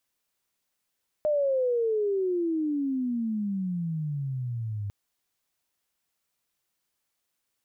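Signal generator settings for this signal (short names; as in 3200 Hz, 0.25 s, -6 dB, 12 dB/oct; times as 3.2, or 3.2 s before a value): gliding synth tone sine, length 3.65 s, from 613 Hz, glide -31.5 st, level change -8 dB, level -21.5 dB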